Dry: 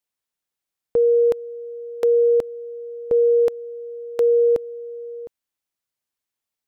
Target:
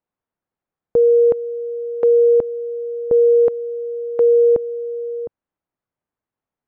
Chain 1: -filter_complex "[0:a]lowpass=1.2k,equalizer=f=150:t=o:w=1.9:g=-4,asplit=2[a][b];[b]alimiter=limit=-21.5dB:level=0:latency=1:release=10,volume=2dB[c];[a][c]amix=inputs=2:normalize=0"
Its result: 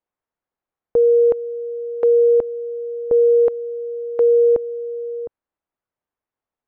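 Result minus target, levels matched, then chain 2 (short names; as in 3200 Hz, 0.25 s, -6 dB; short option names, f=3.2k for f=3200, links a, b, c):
125 Hz band -4.5 dB
-filter_complex "[0:a]lowpass=1.2k,equalizer=f=150:t=o:w=1.9:g=3,asplit=2[a][b];[b]alimiter=limit=-21.5dB:level=0:latency=1:release=10,volume=2dB[c];[a][c]amix=inputs=2:normalize=0"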